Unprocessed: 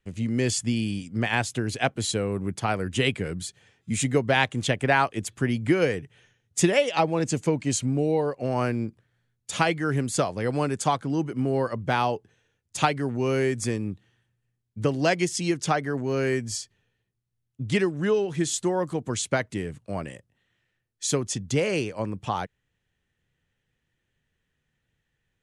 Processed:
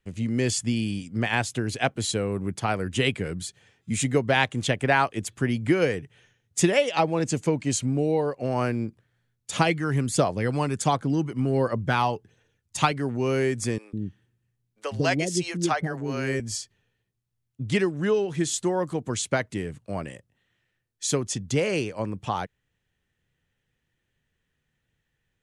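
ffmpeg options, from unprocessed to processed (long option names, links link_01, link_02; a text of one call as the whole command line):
ffmpeg -i in.wav -filter_complex "[0:a]asettb=1/sr,asplit=3[link_01][link_02][link_03];[link_01]atrim=end=9.564[link_04];[link_02]atrim=start=9.56:end=12.92,asetpts=PTS-STARTPTS,afade=type=in:duration=0.004:curve=qsin,afade=type=out:start_time=3.356:duration=0.004:curve=qsin,aphaser=in_gain=1:out_gain=1:delay=1.1:decay=0.39:speed=1.4:type=triangular[link_05];[link_03]atrim=start=12.916[link_06];[link_04][link_05]acrossfade=duration=0.004:curve1=hsin:curve2=qsin[link_07];[link_07][link_06]acrossfade=duration=0.004:curve1=qsin:curve2=hsin,asettb=1/sr,asplit=3[link_08][link_09][link_10];[link_08]atrim=end=13.784[link_11];[link_09]atrim=start=13.78:end=16.4,asetpts=PTS-STARTPTS,afade=type=in:duration=0.004:curve=qsin,afade=type=out:start_time=2.616:duration=0.004:curve=qsin,acrossover=split=500[link_12][link_13];[link_12]adelay=150[link_14];[link_14][link_13]amix=inputs=2:normalize=0,atrim=end_sample=115542[link_15];[link_10]atrim=start=16.396[link_16];[link_11][link_15]acrossfade=duration=0.004:curve1=hsin:curve2=qsin[link_17];[link_17][link_16]acrossfade=duration=0.004:curve1=qsin:curve2=hsin" out.wav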